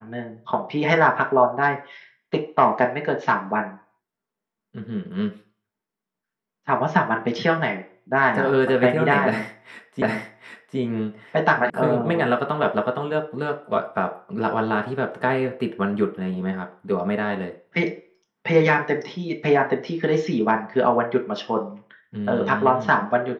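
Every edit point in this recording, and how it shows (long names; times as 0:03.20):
0:10.02: the same again, the last 0.76 s
0:11.70: cut off before it has died away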